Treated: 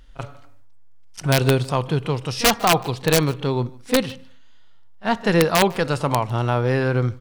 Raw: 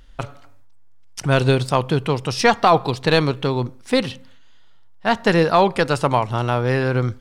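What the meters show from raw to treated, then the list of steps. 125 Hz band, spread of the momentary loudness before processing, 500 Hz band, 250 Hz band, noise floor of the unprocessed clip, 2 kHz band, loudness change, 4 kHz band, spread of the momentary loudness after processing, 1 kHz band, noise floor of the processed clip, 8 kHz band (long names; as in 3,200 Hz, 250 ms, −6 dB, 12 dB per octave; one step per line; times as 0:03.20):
−0.5 dB, 11 LU, −2.5 dB, −1.0 dB, −43 dBFS, −2.0 dB, −1.5 dB, +1.0 dB, 10 LU, −3.5 dB, −41 dBFS, +7.0 dB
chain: echo ahead of the sound 34 ms −20 dB
harmonic and percussive parts rebalanced percussive −5 dB
wrap-around overflow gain 7.5 dB
on a send: single-tap delay 151 ms −24 dB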